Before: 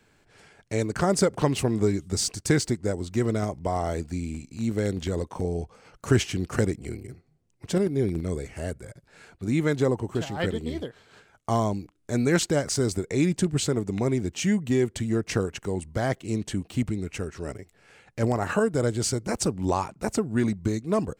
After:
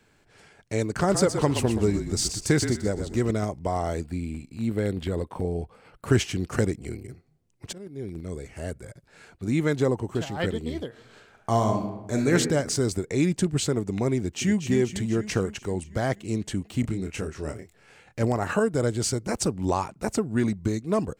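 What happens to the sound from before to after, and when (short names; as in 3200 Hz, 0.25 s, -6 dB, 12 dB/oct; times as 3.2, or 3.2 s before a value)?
0.89–3.31 frequency-shifting echo 0.123 s, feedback 31%, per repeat -37 Hz, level -8 dB
4.05–6.11 bell 6200 Hz -14.5 dB 0.5 oct
7.73–8.85 fade in linear, from -24 dB
10.87–12.33 reverb throw, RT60 1 s, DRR 2.5 dB
14.17–14.58 echo throw 0.24 s, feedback 65%, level -8.5 dB
16.81–18.22 doubler 26 ms -5.5 dB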